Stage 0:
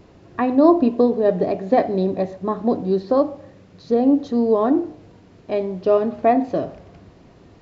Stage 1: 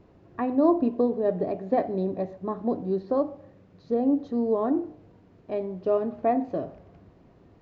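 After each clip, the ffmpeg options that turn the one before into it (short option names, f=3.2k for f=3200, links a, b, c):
-af "highshelf=f=2.9k:g=-12,volume=-7dB"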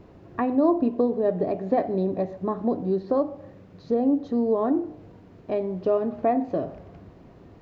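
-af "acompressor=threshold=-34dB:ratio=1.5,volume=6.5dB"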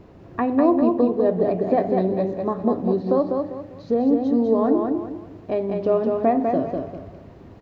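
-af "aecho=1:1:199|398|597|796:0.631|0.202|0.0646|0.0207,volume=2.5dB"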